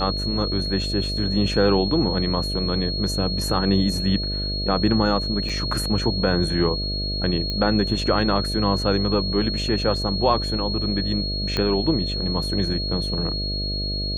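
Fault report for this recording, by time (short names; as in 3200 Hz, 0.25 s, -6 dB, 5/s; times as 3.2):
buzz 50 Hz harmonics 13 -28 dBFS
tone 4300 Hz -27 dBFS
5.49–5.5 gap 5.3 ms
7.5 pop -14 dBFS
11.57 pop -10 dBFS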